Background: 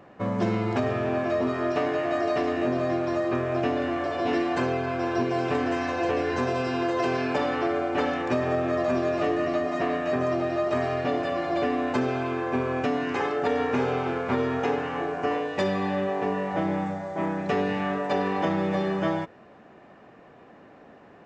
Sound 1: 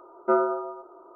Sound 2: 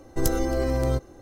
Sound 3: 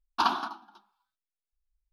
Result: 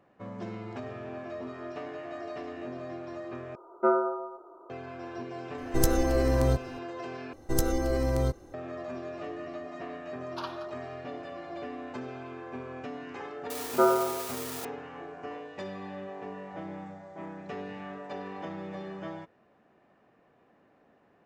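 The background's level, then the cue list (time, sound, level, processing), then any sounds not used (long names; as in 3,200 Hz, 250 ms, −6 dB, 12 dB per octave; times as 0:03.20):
background −13.5 dB
0:03.55: overwrite with 1 −2 dB
0:05.58: mix in 2 −0.5 dB
0:07.33: overwrite with 2 −3 dB
0:10.18: mix in 3 −11.5 dB + high-pass filter 970 Hz
0:13.50: mix in 1 −0.5 dB + spike at every zero crossing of −25 dBFS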